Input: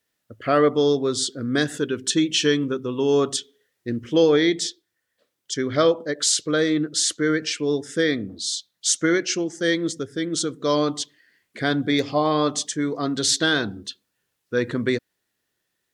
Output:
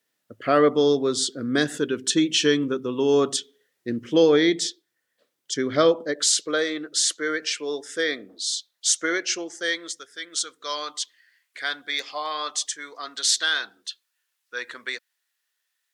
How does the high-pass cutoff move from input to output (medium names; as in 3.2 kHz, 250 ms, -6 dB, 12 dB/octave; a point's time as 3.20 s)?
5.92 s 160 Hz
6.69 s 540 Hz
9.50 s 540 Hz
10.01 s 1.2 kHz